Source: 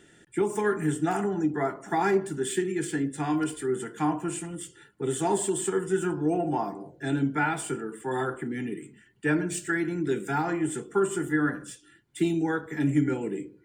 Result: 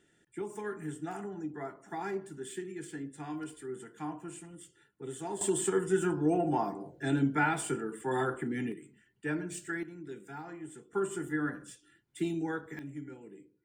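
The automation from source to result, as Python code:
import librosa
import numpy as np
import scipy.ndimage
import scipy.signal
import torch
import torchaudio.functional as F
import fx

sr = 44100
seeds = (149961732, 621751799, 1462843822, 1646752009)

y = fx.gain(x, sr, db=fx.steps((0.0, -12.5), (5.41, -2.0), (8.72, -9.0), (9.83, -16.5), (10.93, -7.5), (12.79, -19.0)))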